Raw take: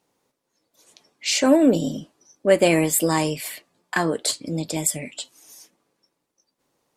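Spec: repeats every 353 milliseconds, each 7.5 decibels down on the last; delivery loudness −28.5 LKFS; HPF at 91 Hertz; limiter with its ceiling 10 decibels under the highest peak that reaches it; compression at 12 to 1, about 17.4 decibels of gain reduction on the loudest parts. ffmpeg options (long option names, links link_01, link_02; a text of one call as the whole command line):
ffmpeg -i in.wav -af "highpass=91,acompressor=threshold=-29dB:ratio=12,alimiter=limit=-24dB:level=0:latency=1,aecho=1:1:353|706|1059|1412|1765:0.422|0.177|0.0744|0.0312|0.0131,volume=7dB" out.wav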